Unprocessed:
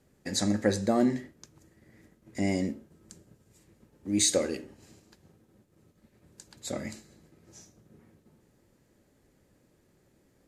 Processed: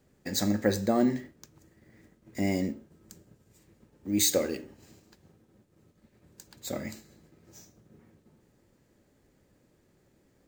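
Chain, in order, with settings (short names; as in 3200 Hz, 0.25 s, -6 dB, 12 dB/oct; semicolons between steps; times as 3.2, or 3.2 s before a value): careless resampling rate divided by 2×, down filtered, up hold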